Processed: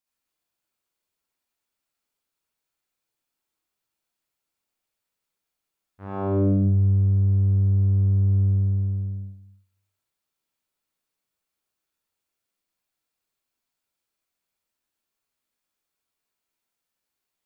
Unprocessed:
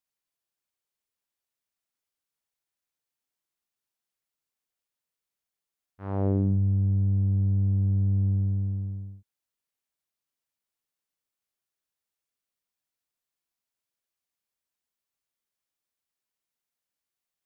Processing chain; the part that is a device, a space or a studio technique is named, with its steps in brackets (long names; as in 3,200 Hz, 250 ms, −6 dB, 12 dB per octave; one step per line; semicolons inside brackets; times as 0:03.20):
bathroom (convolution reverb RT60 0.55 s, pre-delay 59 ms, DRR −5 dB)